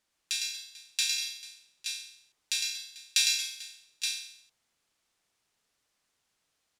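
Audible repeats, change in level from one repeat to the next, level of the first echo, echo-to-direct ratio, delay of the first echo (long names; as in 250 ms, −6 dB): 4, repeats not evenly spaced, −4.0 dB, −2.0 dB, 107 ms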